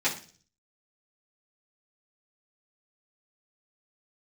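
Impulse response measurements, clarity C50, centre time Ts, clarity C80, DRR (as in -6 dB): 10.5 dB, 19 ms, 15.0 dB, -9.5 dB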